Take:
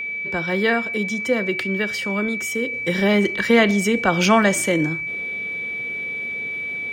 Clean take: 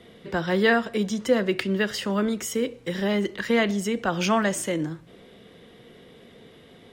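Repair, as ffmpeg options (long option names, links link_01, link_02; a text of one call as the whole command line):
ffmpeg -i in.wav -af "bandreject=frequency=2300:width=30,asetnsamples=nb_out_samples=441:pad=0,asendcmd='2.73 volume volume -6.5dB',volume=0dB" out.wav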